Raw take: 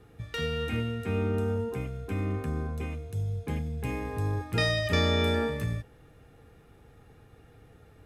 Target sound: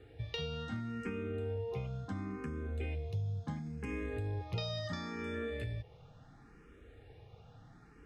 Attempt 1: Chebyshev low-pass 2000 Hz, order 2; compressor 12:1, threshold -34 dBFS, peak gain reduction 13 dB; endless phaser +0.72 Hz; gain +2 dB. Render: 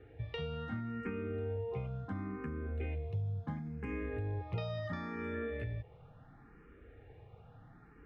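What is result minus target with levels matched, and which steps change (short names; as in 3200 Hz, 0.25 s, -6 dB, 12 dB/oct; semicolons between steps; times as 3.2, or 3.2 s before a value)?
4000 Hz band -8.0 dB
change: Chebyshev low-pass 5200 Hz, order 2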